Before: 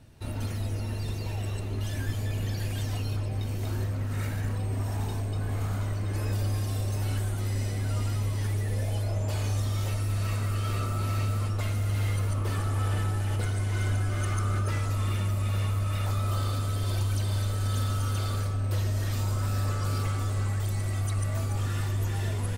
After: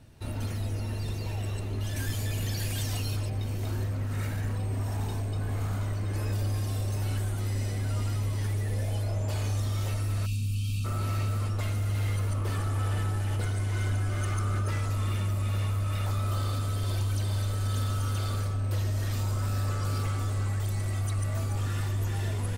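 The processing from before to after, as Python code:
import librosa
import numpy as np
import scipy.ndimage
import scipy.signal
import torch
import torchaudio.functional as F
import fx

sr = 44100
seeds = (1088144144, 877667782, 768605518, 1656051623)

y = fx.high_shelf(x, sr, hz=3000.0, db=9.0, at=(1.96, 3.3))
y = fx.spec_box(y, sr, start_s=10.26, length_s=0.59, low_hz=270.0, high_hz=2300.0, gain_db=-28)
y = 10.0 ** (-20.0 / 20.0) * np.tanh(y / 10.0 ** (-20.0 / 20.0))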